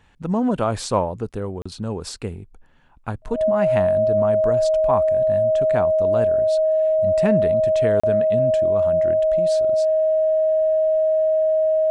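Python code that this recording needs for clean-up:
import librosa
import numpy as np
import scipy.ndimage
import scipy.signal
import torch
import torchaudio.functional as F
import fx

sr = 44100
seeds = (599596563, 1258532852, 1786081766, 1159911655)

y = fx.notch(x, sr, hz=630.0, q=30.0)
y = fx.fix_interpolate(y, sr, at_s=(1.62, 8.0), length_ms=35.0)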